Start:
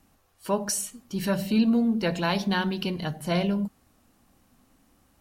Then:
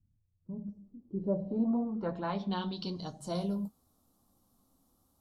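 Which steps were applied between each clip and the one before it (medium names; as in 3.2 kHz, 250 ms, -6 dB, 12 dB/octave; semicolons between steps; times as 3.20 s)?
high-order bell 2.1 kHz -14.5 dB 1.1 oct; low-pass sweep 120 Hz -> 13 kHz, 0.32–3.60 s; flange 0.91 Hz, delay 9 ms, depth 3.3 ms, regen -40%; trim -5 dB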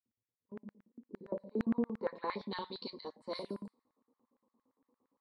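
level-controlled noise filter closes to 1.2 kHz, open at -27.5 dBFS; rippled EQ curve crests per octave 0.95, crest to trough 14 dB; LFO high-pass square 8.7 Hz 330–1700 Hz; trim -5.5 dB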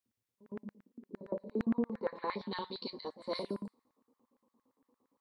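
gain riding 2 s; pre-echo 112 ms -18 dB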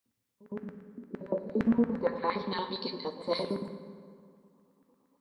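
reverberation RT60 2.1 s, pre-delay 3 ms, DRR 7.5 dB; trim +5.5 dB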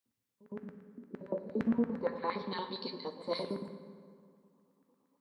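high-pass 72 Hz; trim -4.5 dB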